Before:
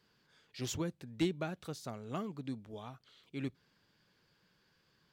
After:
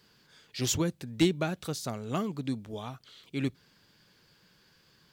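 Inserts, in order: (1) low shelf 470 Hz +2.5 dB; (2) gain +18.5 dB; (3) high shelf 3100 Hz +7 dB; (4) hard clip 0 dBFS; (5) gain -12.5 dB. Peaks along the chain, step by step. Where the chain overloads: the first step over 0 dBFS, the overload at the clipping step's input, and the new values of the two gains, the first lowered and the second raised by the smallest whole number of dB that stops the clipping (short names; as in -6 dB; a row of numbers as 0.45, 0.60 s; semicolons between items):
-21.5, -3.0, -2.5, -2.5, -15.0 dBFS; no overload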